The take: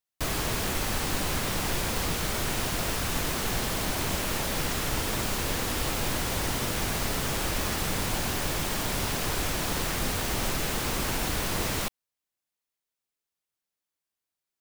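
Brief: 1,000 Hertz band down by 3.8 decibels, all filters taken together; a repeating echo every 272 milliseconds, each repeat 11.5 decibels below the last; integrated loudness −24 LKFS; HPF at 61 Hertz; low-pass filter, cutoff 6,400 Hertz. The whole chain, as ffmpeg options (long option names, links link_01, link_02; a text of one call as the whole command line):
ffmpeg -i in.wav -af "highpass=61,lowpass=6400,equalizer=frequency=1000:width_type=o:gain=-5,aecho=1:1:272|544|816:0.266|0.0718|0.0194,volume=7dB" out.wav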